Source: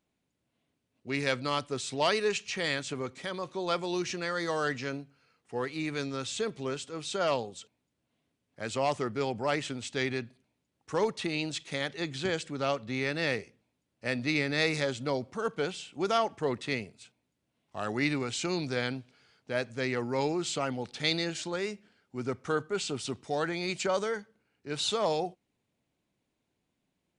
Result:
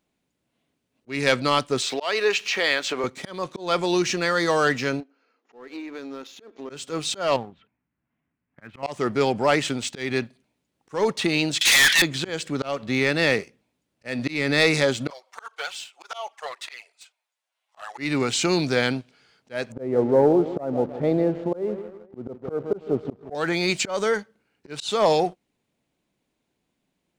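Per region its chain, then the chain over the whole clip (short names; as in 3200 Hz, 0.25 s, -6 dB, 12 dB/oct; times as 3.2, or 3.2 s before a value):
1.82–3.04 BPF 430–5000 Hz + upward compressor, threshold -30 dBFS
5–6.7 compressor 12:1, threshold -38 dBFS + brick-wall FIR band-pass 220–7200 Hz + high shelf 2100 Hz -11.5 dB
7.36–8.83 LPF 2100 Hz 24 dB/oct + bell 490 Hz -12.5 dB 1.3 oct
11.61–12.02 Chebyshev high-pass 1500 Hz, order 4 + overdrive pedal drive 33 dB, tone 3500 Hz, clips at -20.5 dBFS + high shelf 4200 Hz +11.5 dB
15.1–17.98 HPF 740 Hz 24 dB/oct + envelope flanger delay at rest 9.6 ms, full sweep at -28.5 dBFS
19.72–23.35 synth low-pass 610 Hz, resonance Q 1.8 + feedback echo 0.159 s, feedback 47%, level -14 dB
whole clip: bell 97 Hz -6.5 dB 0.68 oct; sample leveller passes 1; auto swell 0.224 s; gain +6.5 dB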